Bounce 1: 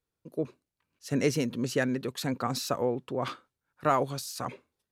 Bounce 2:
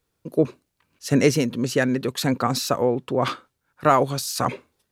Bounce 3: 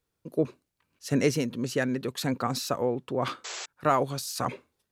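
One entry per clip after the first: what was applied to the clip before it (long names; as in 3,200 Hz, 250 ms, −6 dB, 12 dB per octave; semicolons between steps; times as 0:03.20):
speech leveller within 4 dB 0.5 s; level +8 dB
sound drawn into the spectrogram noise, 0:03.44–0:03.66, 350–7,900 Hz −31 dBFS; level −6.5 dB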